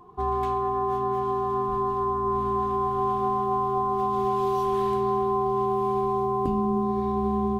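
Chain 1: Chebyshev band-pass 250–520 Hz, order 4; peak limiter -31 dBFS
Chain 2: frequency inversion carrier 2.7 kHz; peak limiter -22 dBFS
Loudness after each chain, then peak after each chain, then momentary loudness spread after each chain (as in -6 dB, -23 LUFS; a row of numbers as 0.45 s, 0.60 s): -35.5 LUFS, -27.5 LUFS; -31.0 dBFS, -22.0 dBFS; 1 LU, 1 LU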